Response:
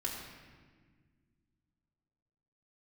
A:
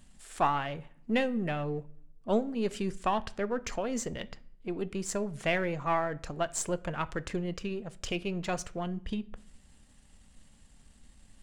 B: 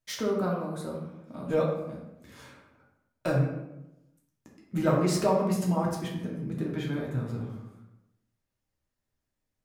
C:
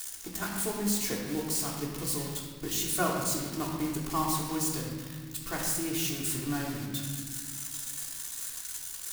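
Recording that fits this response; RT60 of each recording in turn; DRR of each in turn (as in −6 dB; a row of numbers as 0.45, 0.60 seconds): C; non-exponential decay, 0.95 s, 1.6 s; 14.0, −3.0, −4.0 decibels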